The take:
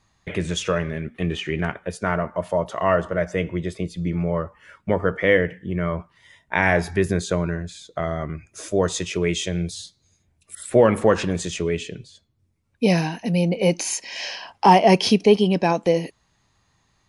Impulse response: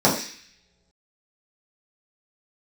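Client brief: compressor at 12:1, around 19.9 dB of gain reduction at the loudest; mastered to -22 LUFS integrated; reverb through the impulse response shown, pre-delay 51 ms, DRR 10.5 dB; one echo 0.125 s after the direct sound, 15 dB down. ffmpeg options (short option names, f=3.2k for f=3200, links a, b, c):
-filter_complex "[0:a]acompressor=threshold=-30dB:ratio=12,aecho=1:1:125:0.178,asplit=2[a][b];[1:a]atrim=start_sample=2205,adelay=51[c];[b][c]afir=irnorm=-1:irlink=0,volume=-30.5dB[d];[a][d]amix=inputs=2:normalize=0,volume=12.5dB"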